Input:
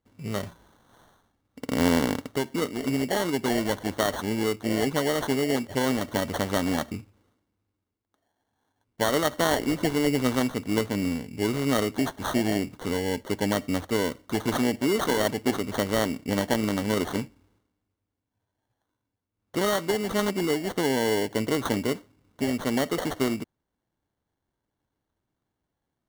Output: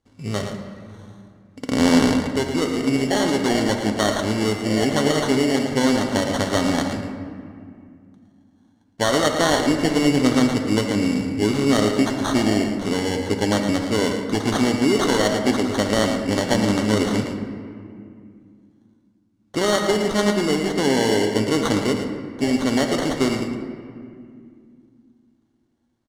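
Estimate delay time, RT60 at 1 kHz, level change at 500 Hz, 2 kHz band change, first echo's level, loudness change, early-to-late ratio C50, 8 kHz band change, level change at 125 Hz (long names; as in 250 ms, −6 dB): 112 ms, 2.1 s, +5.5 dB, +5.5 dB, −8.0 dB, +6.0 dB, 4.0 dB, +6.5 dB, +6.5 dB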